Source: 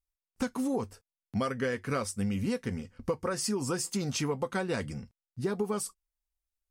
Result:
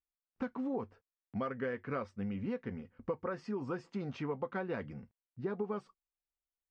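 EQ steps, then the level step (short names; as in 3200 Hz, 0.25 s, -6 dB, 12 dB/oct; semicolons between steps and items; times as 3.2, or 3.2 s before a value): LPF 2200 Hz 12 dB/oct; air absorption 110 m; low shelf 89 Hz -12 dB; -4.5 dB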